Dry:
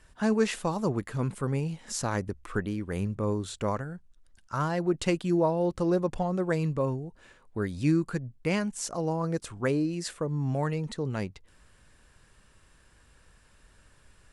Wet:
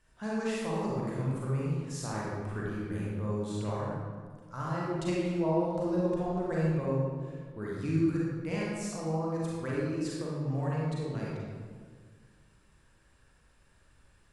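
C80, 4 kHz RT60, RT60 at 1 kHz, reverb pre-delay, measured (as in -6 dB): 0.0 dB, 1.0 s, 1.6 s, 34 ms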